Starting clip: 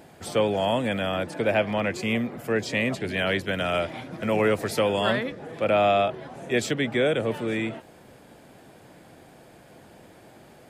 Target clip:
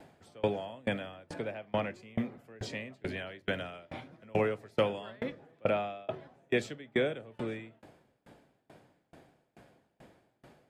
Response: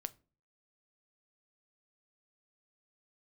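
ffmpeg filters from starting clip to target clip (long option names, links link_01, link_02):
-filter_complex "[0:a]highshelf=frequency=7600:gain=-10.5[link_01];[1:a]atrim=start_sample=2205,asetrate=41454,aresample=44100[link_02];[link_01][link_02]afir=irnorm=-1:irlink=0,aeval=exprs='val(0)*pow(10,-30*if(lt(mod(2.3*n/s,1),2*abs(2.3)/1000),1-mod(2.3*n/s,1)/(2*abs(2.3)/1000),(mod(2.3*n/s,1)-2*abs(2.3)/1000)/(1-2*abs(2.3)/1000))/20)':channel_layout=same"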